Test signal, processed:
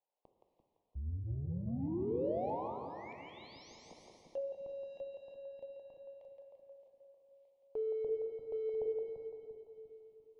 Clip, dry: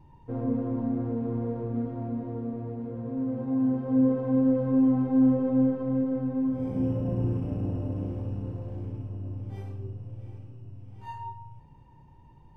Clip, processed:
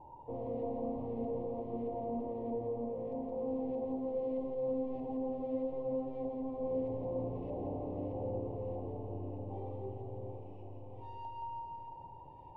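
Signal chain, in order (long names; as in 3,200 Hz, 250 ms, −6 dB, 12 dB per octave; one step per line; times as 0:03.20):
parametric band 190 Hz −13 dB 1.9 octaves
mains-hum notches 50/100/150/200/250/300/350/400/450 Hz
brickwall limiter −30 dBFS
mid-hump overdrive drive 25 dB, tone 1,400 Hz, clips at −30 dBFS
auto-filter low-pass saw up 1.6 Hz 830–1,800 Hz
Butterworth band-reject 1,500 Hz, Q 0.51
on a send: echo with a time of its own for lows and highs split 330 Hz, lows 346 ms, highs 170 ms, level −4.5 dB
on the sum: dense smooth reverb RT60 2.5 s, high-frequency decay 0.9×, DRR 5 dB
one half of a high-frequency compander encoder only
level −3.5 dB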